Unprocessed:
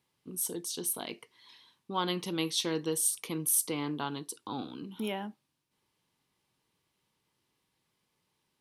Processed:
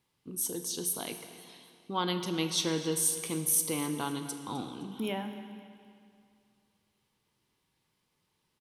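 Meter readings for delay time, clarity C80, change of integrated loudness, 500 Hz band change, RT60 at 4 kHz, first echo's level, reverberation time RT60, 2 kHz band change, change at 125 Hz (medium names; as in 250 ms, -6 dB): 258 ms, 9.0 dB, +1.0 dB, +0.5 dB, 2.1 s, -18.0 dB, 2.4 s, +1.0 dB, +2.5 dB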